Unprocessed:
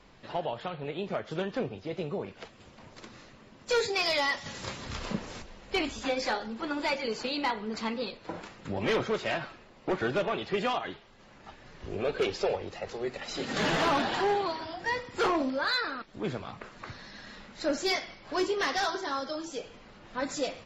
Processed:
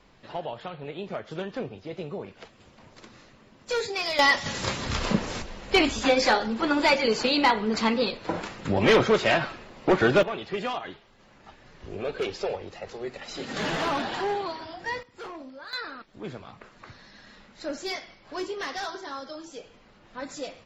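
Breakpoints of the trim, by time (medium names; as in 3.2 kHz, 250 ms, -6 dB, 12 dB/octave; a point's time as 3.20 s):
-1 dB
from 4.19 s +9 dB
from 10.23 s -1 dB
from 15.03 s -13 dB
from 15.73 s -4 dB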